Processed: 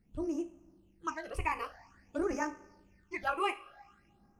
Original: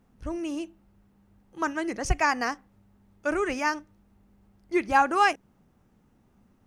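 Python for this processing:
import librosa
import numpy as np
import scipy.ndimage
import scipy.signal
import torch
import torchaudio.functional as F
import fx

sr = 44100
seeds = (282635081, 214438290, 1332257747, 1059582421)

y = fx.rev_double_slope(x, sr, seeds[0], early_s=0.55, late_s=2.9, knee_db=-18, drr_db=6.5)
y = fx.phaser_stages(y, sr, stages=8, low_hz=200.0, high_hz=4000.0, hz=0.33, feedback_pct=45)
y = fx.stretch_grains(y, sr, factor=0.66, grain_ms=37.0)
y = y * 10.0 ** (-5.5 / 20.0)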